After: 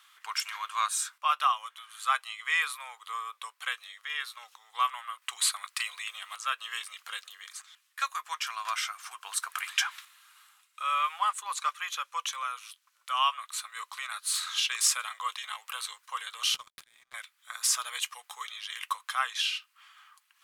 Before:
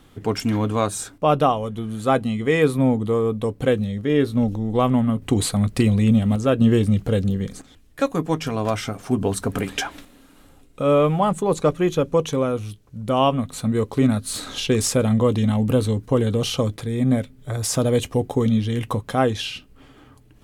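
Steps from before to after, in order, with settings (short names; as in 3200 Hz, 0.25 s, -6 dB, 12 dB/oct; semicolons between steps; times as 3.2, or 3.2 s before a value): elliptic high-pass 1100 Hz, stop band 80 dB; 16.54–17.14 power-law curve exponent 2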